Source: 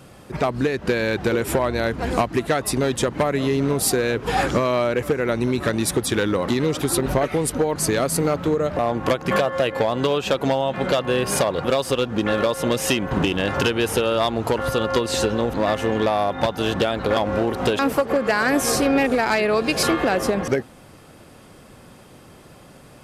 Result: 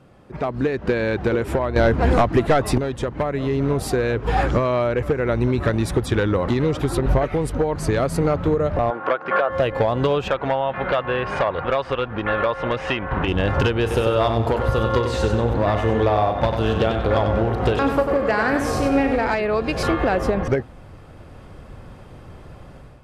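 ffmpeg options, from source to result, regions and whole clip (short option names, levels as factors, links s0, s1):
-filter_complex "[0:a]asettb=1/sr,asplit=3[s0][s1][s2];[s0]atrim=end=1.764[s3];[s1]atrim=start=1.76:end=2.78,asetpts=PTS-STARTPTS,afade=t=in:d=0.004:c=qsin,afade=t=out:st=1.016:d=0.004:c=qsin,highpass=60,aeval=exprs='0.562*sin(PI/2*2.24*val(0)/0.562)':c=same[s4];[s2]atrim=start=2.776[s5];[s3][s4]acrossfade=d=0.004:c1=hsin:c2=qsin[s6];[s6][s5]acrossfade=d=0.004:c1=qsin:c2=hsin,asettb=1/sr,asplit=3[s7][s8][s9];[s7]atrim=end=8.904[s10];[s8]atrim=start=8.9:end=9.5,asetpts=PTS-STARTPTS,afade=t=in:d=0.004:c=qsin,afade=t=out:st=0.596:d=0.004:c=qsin,highpass=430,lowpass=2800,equalizer=f=1400:w=4.3:g=9[s11];[s9]atrim=start=9.496[s12];[s10][s11]acrossfade=d=0.004:c1=hsin:c2=qsin[s13];[s13][s12]acrossfade=d=0.004:c1=qsin:c2=hsin,asettb=1/sr,asplit=3[s14][s15][s16];[s14]atrim=end=10.284[s17];[s15]atrim=start=10.28:end=13.28,asetpts=PTS-STARTPTS,afade=t=in:d=0.004:c=qsin,afade=t=out:st=2.996:d=0.004:c=qsin,lowpass=2000,tiltshelf=f=790:g=-8.5,asoftclip=type=hard:threshold=0.316[s18];[s16]atrim=start=13.276[s19];[s17][s18]acrossfade=d=0.004:c1=hsin:c2=qsin[s20];[s20][s19]acrossfade=d=0.004:c1=qsin:c2=hsin,asettb=1/sr,asplit=3[s21][s22][s23];[s21]atrim=end=13.814[s24];[s22]atrim=start=13.81:end=19.34,asetpts=PTS-STARTPTS,afade=t=in:d=0.004:c=qsin,afade=t=out:st=5.526:d=0.004:c=qsin,highpass=40,asplit=2[s25][s26];[s26]adelay=36,volume=0.251[s27];[s25][s27]amix=inputs=2:normalize=0,atrim=end_sample=243873,aecho=1:1:95|190|285|380:0.473|0.161|0.0547|0.0186,atrim=end_sample=243873[s28];[s23]atrim=start=19.336[s29];[s24][s28]acrossfade=d=0.004:c1=hsin:c2=qsin[s30];[s30][s29]acrossfade=d=0.004:c1=qsin:c2=hsin,lowpass=f=1600:p=1,asubboost=boost=4:cutoff=98,dynaudnorm=f=340:g=3:m=2.82,volume=0.562"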